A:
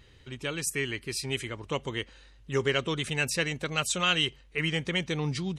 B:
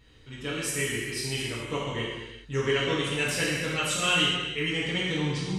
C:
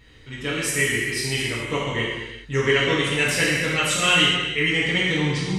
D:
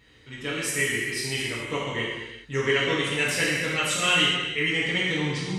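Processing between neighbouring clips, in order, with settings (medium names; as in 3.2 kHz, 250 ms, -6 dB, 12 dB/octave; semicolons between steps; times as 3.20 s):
gated-style reverb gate 450 ms falling, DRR -6.5 dB; trim -5.5 dB
peaking EQ 2 kHz +6.5 dB 0.34 oct; trim +5.5 dB
high-pass 120 Hz 6 dB/octave; trim -3.5 dB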